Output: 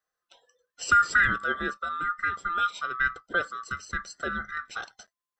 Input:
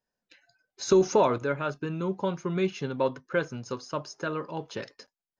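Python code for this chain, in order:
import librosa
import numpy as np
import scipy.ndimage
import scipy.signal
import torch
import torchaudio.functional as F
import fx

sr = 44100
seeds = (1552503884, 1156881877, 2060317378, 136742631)

y = fx.band_swap(x, sr, width_hz=1000)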